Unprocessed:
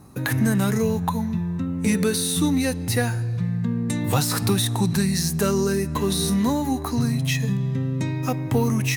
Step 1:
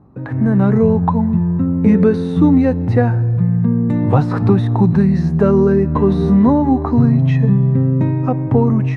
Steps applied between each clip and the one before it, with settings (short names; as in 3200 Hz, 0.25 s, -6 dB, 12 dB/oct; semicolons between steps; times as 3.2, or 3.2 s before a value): LPF 1000 Hz 12 dB/oct; AGC gain up to 13 dB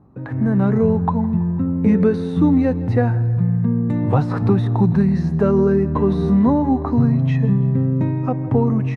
feedback echo 0.164 s, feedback 51%, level -19.5 dB; gain -3.5 dB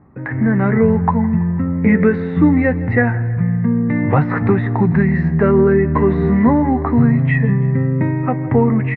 synth low-pass 2000 Hz, resonance Q 6.2; doubler 13 ms -11 dB; gain +2 dB